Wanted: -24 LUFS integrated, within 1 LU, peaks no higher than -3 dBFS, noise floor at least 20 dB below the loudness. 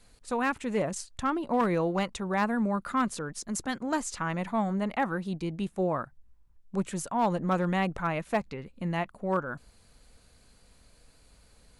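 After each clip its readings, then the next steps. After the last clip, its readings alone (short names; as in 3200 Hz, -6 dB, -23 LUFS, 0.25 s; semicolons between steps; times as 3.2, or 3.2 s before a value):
clipped 0.2%; flat tops at -19.0 dBFS; loudness -30.5 LUFS; peak -19.0 dBFS; loudness target -24.0 LUFS
-> clip repair -19 dBFS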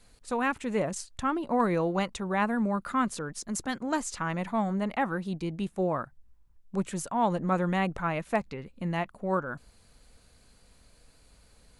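clipped 0.0%; loudness -30.5 LUFS; peak -14.0 dBFS; loudness target -24.0 LUFS
-> gain +6.5 dB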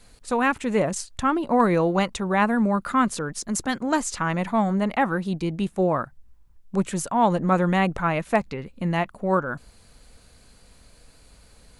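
loudness -24.0 LUFS; peak -7.5 dBFS; noise floor -54 dBFS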